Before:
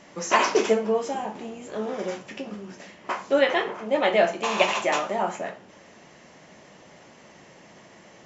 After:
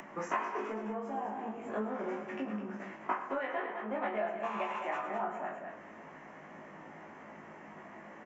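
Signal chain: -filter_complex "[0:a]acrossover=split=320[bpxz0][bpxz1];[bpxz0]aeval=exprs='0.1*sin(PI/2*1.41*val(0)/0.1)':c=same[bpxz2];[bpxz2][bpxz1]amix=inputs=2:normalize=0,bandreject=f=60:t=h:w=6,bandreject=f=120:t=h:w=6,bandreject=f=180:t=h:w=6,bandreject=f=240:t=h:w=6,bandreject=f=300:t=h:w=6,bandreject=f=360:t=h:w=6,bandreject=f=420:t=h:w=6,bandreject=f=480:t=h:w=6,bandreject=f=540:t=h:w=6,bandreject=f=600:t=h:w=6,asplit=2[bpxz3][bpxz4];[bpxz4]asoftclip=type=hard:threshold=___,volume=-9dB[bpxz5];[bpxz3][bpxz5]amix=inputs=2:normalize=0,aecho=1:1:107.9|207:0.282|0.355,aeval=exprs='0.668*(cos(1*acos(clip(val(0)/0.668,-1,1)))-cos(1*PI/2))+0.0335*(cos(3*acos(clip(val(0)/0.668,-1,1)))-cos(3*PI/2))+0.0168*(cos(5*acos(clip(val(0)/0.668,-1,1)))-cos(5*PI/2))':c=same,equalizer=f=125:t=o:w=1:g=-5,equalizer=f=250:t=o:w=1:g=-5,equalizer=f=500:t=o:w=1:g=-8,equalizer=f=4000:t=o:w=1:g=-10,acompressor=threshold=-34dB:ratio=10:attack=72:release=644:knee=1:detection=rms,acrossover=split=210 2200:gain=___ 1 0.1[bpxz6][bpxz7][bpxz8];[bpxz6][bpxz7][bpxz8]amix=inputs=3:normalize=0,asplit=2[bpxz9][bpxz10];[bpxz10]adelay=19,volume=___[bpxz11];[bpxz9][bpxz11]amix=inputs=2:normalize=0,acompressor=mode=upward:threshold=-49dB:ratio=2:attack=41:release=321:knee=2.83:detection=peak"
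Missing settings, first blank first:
-21.5dB, 0.158, -2dB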